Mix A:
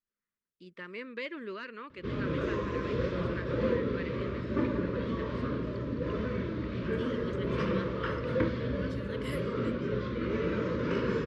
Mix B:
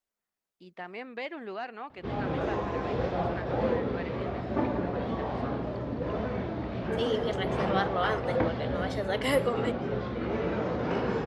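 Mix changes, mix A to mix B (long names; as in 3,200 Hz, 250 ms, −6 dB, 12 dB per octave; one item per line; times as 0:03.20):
second voice +12.0 dB
master: remove Butterworth band-reject 760 Hz, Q 1.6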